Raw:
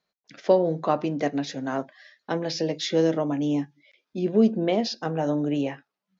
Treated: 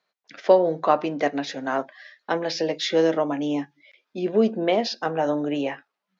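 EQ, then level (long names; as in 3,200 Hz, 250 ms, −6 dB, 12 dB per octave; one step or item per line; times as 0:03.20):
high-pass filter 800 Hz 6 dB per octave
low-pass filter 2,400 Hz 6 dB per octave
+8.5 dB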